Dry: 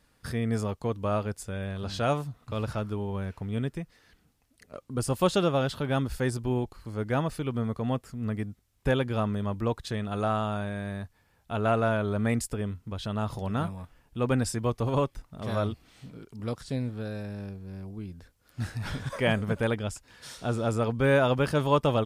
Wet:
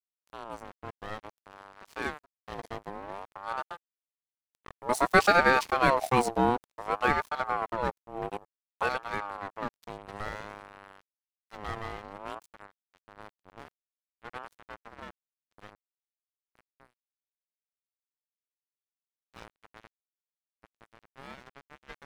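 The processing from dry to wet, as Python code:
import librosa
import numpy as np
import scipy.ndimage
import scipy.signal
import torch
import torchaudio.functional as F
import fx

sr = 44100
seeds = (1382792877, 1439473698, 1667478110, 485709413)

y = fx.doppler_pass(x, sr, speed_mps=6, closest_m=8.1, pass_at_s=5.95)
y = np.sign(y) * np.maximum(np.abs(y) - 10.0 ** (-41.0 / 20.0), 0.0)
y = fx.ring_lfo(y, sr, carrier_hz=810.0, swing_pct=30, hz=0.55)
y = y * librosa.db_to_amplitude(8.0)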